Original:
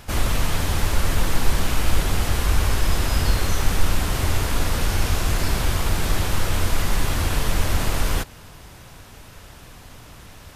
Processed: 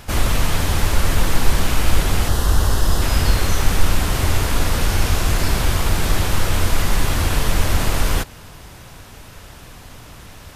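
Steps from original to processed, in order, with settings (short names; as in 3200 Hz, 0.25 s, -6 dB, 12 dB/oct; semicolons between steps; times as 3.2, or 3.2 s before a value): 2.28–3.02 bell 2300 Hz -14.5 dB 0.35 oct; gain +3.5 dB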